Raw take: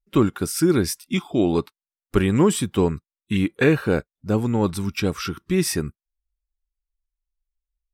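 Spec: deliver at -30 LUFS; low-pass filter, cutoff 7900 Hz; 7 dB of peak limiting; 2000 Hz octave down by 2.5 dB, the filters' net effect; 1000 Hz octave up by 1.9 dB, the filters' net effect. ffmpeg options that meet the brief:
-af "lowpass=7.9k,equalizer=f=1k:t=o:g=3.5,equalizer=f=2k:t=o:g=-4.5,volume=-6dB,alimiter=limit=-17.5dB:level=0:latency=1"

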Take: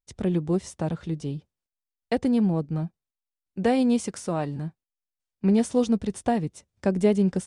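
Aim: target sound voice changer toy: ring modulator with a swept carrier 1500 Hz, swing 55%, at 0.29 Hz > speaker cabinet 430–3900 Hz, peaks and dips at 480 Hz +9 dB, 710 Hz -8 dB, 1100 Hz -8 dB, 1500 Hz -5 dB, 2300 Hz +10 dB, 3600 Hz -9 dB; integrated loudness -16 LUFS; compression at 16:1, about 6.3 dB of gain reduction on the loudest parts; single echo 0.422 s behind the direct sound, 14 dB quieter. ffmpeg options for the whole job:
-af "acompressor=threshold=-22dB:ratio=16,aecho=1:1:422:0.2,aeval=exprs='val(0)*sin(2*PI*1500*n/s+1500*0.55/0.29*sin(2*PI*0.29*n/s))':c=same,highpass=430,equalizer=f=480:t=q:w=4:g=9,equalizer=f=710:t=q:w=4:g=-8,equalizer=f=1.1k:t=q:w=4:g=-8,equalizer=f=1.5k:t=q:w=4:g=-5,equalizer=f=2.3k:t=q:w=4:g=10,equalizer=f=3.6k:t=q:w=4:g=-9,lowpass=f=3.9k:w=0.5412,lowpass=f=3.9k:w=1.3066,volume=11dB"

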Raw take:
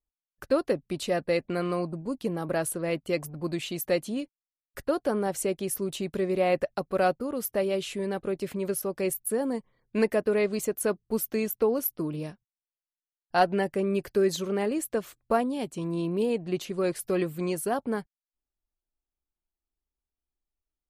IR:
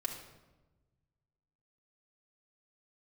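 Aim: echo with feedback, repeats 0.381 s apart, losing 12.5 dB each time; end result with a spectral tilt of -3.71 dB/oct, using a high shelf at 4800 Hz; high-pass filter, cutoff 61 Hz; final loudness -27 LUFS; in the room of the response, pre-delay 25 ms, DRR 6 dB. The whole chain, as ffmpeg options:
-filter_complex "[0:a]highpass=61,highshelf=f=4.8k:g=7.5,aecho=1:1:381|762|1143:0.237|0.0569|0.0137,asplit=2[a][b];[1:a]atrim=start_sample=2205,adelay=25[c];[b][c]afir=irnorm=-1:irlink=0,volume=-7.5dB[d];[a][d]amix=inputs=2:normalize=0"

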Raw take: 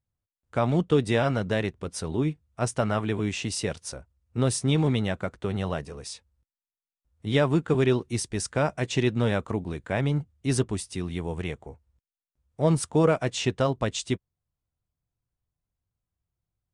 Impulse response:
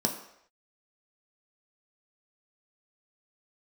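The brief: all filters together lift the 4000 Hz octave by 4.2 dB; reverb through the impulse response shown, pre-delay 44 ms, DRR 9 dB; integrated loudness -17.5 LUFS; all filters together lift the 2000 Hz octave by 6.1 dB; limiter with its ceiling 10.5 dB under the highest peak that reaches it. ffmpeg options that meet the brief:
-filter_complex "[0:a]equalizer=f=2k:t=o:g=7,equalizer=f=4k:t=o:g=3,alimiter=limit=-17.5dB:level=0:latency=1,asplit=2[a][b];[1:a]atrim=start_sample=2205,adelay=44[c];[b][c]afir=irnorm=-1:irlink=0,volume=-16.5dB[d];[a][d]amix=inputs=2:normalize=0,volume=10.5dB"

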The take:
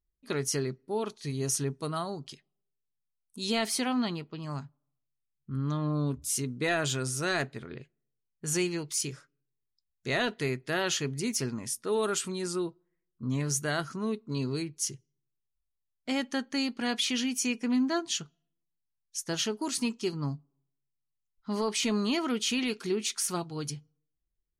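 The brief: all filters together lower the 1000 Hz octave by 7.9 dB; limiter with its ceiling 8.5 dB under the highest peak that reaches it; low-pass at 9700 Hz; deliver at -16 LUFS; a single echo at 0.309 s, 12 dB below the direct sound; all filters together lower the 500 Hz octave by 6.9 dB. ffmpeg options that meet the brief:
-af "lowpass=9.7k,equalizer=f=500:t=o:g=-7.5,equalizer=f=1k:t=o:g=-8.5,alimiter=level_in=2.5dB:limit=-24dB:level=0:latency=1,volume=-2.5dB,aecho=1:1:309:0.251,volume=20dB"

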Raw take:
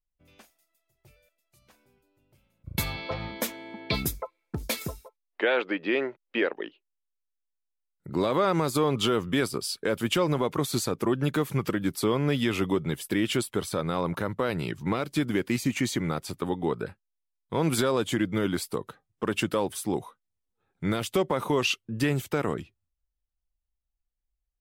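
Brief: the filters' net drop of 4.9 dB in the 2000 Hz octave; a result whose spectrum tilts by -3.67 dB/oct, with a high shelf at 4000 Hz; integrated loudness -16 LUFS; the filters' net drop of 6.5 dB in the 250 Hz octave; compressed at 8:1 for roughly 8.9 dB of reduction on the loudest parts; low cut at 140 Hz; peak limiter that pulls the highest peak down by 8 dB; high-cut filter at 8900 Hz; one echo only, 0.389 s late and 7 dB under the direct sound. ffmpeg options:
-af "highpass=140,lowpass=8.9k,equalizer=f=250:t=o:g=-8.5,equalizer=f=2k:t=o:g=-8.5,highshelf=f=4k:g=7,acompressor=threshold=-32dB:ratio=8,alimiter=level_in=2.5dB:limit=-24dB:level=0:latency=1,volume=-2.5dB,aecho=1:1:389:0.447,volume=22dB"

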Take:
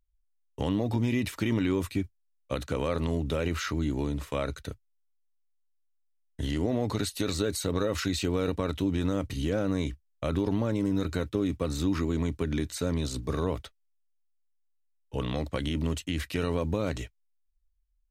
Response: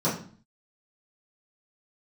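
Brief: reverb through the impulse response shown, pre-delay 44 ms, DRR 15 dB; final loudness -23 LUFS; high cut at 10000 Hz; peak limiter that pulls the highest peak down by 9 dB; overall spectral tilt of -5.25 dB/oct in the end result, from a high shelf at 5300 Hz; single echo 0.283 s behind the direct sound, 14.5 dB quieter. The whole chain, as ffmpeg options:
-filter_complex "[0:a]lowpass=10k,highshelf=f=5.3k:g=5.5,alimiter=limit=-23dB:level=0:latency=1,aecho=1:1:283:0.188,asplit=2[a][b];[1:a]atrim=start_sample=2205,adelay=44[c];[b][c]afir=irnorm=-1:irlink=0,volume=-27.5dB[d];[a][d]amix=inputs=2:normalize=0,volume=10.5dB"

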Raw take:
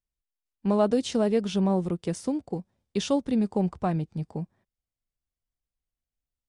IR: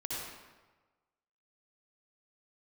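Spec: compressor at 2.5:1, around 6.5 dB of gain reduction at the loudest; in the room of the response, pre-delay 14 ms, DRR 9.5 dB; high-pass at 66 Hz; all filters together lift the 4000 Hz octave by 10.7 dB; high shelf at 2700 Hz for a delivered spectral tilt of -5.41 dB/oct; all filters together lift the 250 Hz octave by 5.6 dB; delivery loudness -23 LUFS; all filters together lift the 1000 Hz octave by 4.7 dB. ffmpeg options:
-filter_complex "[0:a]highpass=66,equalizer=f=250:t=o:g=7,equalizer=f=1k:t=o:g=4.5,highshelf=f=2.7k:g=7,equalizer=f=4k:t=o:g=7.5,acompressor=threshold=-24dB:ratio=2.5,asplit=2[a][b];[1:a]atrim=start_sample=2205,adelay=14[c];[b][c]afir=irnorm=-1:irlink=0,volume=-12.5dB[d];[a][d]amix=inputs=2:normalize=0,volume=4dB"

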